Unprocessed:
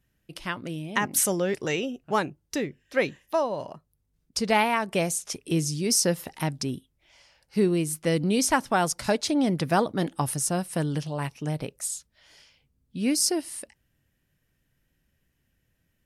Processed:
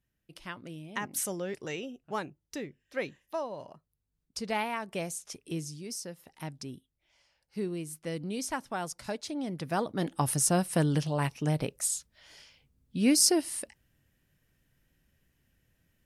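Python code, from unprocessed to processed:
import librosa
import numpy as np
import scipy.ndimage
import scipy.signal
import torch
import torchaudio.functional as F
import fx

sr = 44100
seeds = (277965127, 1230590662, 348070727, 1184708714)

y = fx.gain(x, sr, db=fx.line((5.51, -9.5), (6.16, -19.5), (6.45, -11.5), (9.49, -11.5), (10.41, 1.0)))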